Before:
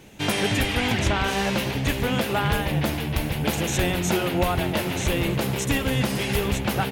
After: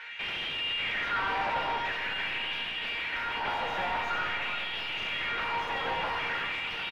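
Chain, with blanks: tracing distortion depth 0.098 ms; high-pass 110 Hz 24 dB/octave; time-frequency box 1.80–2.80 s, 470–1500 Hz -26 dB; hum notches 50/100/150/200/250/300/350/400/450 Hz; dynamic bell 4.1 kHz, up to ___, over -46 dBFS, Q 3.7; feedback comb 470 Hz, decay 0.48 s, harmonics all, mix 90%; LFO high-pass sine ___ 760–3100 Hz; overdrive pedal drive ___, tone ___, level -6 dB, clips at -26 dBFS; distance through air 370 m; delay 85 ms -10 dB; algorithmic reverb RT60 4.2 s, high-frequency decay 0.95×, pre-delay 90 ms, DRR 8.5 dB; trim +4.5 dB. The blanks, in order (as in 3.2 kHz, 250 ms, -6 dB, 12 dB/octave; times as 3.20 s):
-5 dB, 0.47 Hz, 33 dB, 4.8 kHz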